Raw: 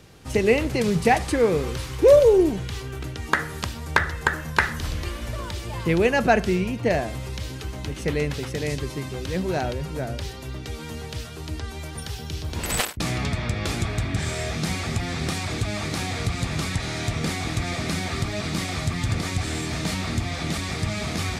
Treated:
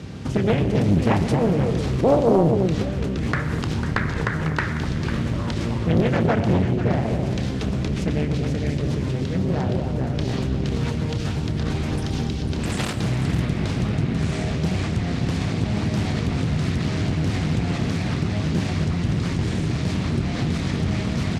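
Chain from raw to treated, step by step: octaver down 1 oct, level +2 dB; HPF 150 Hz 12 dB/oct; tone controls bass +13 dB, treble +2 dB; in parallel at +2.5 dB: negative-ratio compressor -32 dBFS, ratio -1; on the sum: air absorption 74 m; doubler 30 ms -13.5 dB; echo with dull and thin repeats by turns 0.249 s, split 830 Hz, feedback 53%, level -5 dB; on a send at -11 dB: reverb RT60 0.85 s, pre-delay 85 ms; on the sum: Doppler distortion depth 0.76 ms; gain -6 dB

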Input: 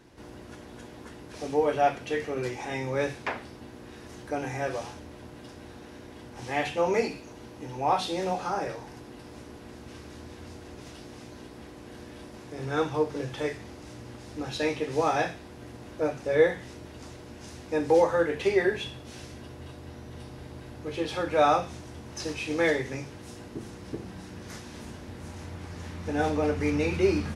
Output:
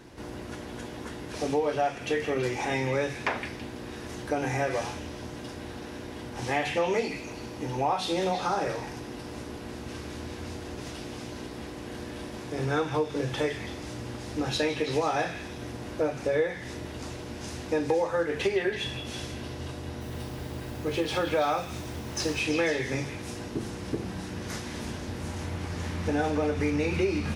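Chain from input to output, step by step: compressor 5:1, threshold -30 dBFS, peak gain reduction 13.5 dB; 20–22.4 added noise white -62 dBFS; delay with a stepping band-pass 0.165 s, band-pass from 2500 Hz, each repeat 0.7 oct, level -5.5 dB; gain +6 dB

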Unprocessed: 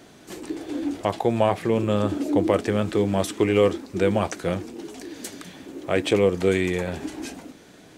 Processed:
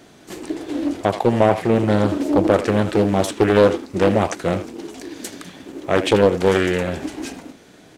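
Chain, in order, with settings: in parallel at -6 dB: crossover distortion -41.5 dBFS; on the sum: speakerphone echo 80 ms, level -11 dB; Doppler distortion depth 0.48 ms; gain +1.5 dB

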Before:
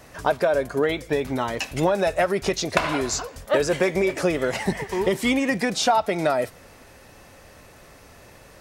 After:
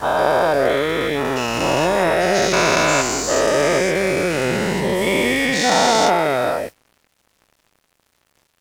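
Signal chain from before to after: spectral dilation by 0.48 s; crossover distortion -36.5 dBFS; gain -3 dB

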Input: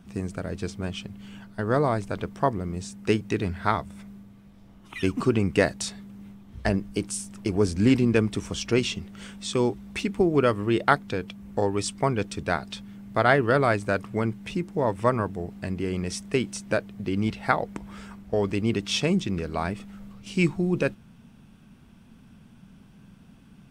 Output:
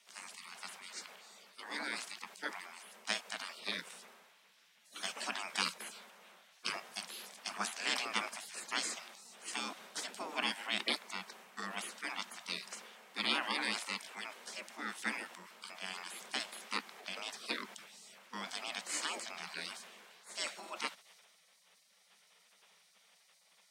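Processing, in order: weighting filter A; spectral gate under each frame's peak -20 dB weak; HPF 77 Hz 24 dB/oct; frequency shift +97 Hz; transient shaper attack -1 dB, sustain +6 dB; gain +3.5 dB

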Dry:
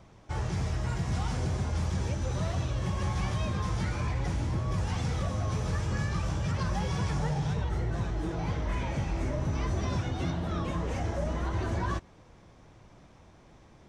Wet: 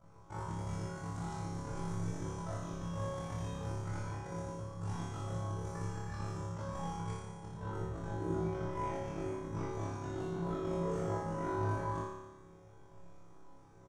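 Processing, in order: band shelf 3200 Hz -9 dB; comb 7 ms, depth 72%; negative-ratio compressor -31 dBFS, ratio -0.5; resonator bank A2 fifth, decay 0.4 s; AM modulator 49 Hz, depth 70%; on a send: flutter echo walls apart 5 m, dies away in 1.1 s; on the sum: gain +6 dB

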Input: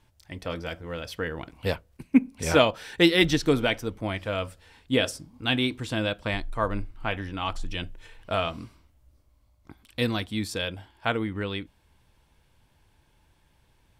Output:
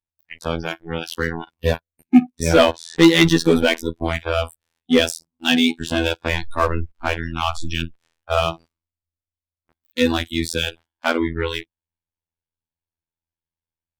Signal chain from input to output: robotiser 82.7 Hz; sample leveller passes 3; spectral noise reduction 24 dB

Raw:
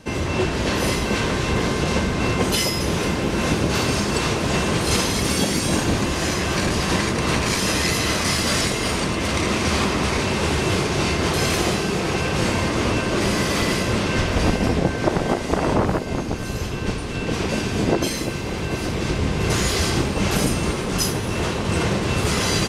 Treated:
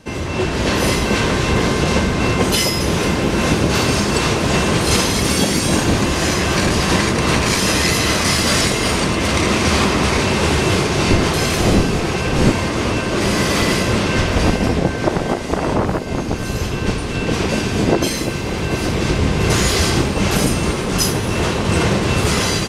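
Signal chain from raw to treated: 11.08–12.5 wind noise 280 Hz -19 dBFS; AGC gain up to 6 dB

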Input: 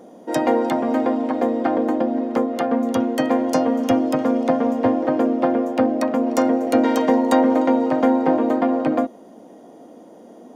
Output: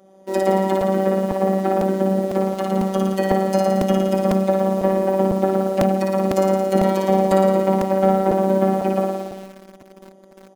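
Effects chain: comb 3.6 ms, depth 51%; on a send: flutter echo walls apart 9.7 m, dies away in 1.3 s; on the sum: dynamic EQ 410 Hz, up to +6 dB, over -38 dBFS, Q 0.96; in parallel at -4.5 dB: bit-crush 5-bit; on the sum: robotiser 192 Hz; crackling interface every 0.50 s, samples 128, repeat, from 0.81; gain -7 dB

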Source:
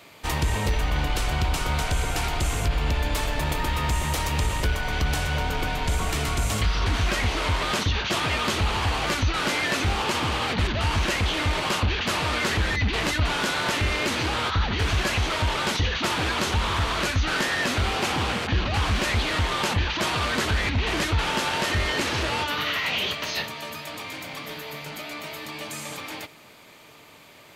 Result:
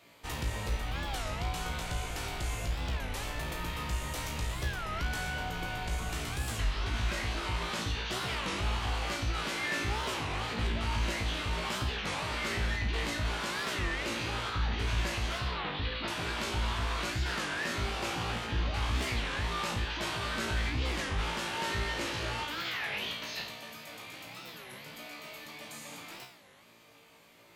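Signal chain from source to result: 15.38–16.08 Chebyshev low-pass 4400 Hz, order 4; resonator 57 Hz, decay 0.62 s, harmonics all, mix 90%; record warp 33 1/3 rpm, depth 250 cents

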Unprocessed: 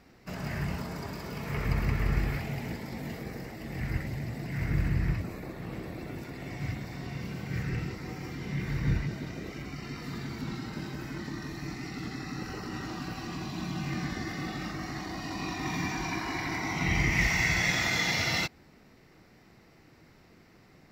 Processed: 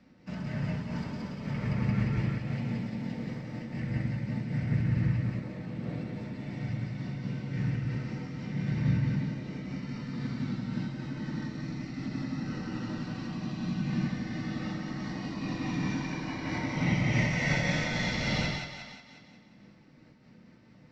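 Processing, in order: HPF 120 Hz 12 dB/oct; high shelf 2000 Hz +10.5 dB; in parallel at -10.5 dB: sample-rate reducer 1400 Hz; on the sum: air absorption 150 m; split-band echo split 580 Hz, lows 94 ms, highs 0.18 s, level -3 dB; on a send at -1.5 dB: reverb RT60 0.20 s, pre-delay 3 ms; on the sum: noise-modulated level, depth 55%; gain -8 dB

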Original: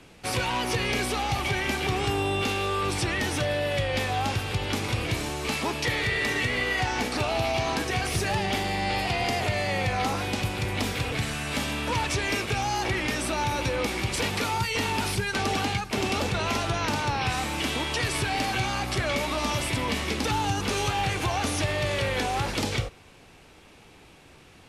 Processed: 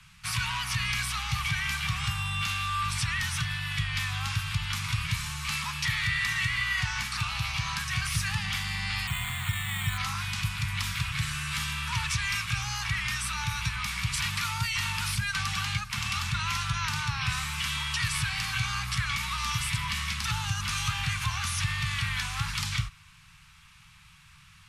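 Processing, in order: elliptic band-stop 160–1100 Hz, stop band 50 dB; 9.07–9.98 careless resampling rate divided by 8×, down filtered, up hold

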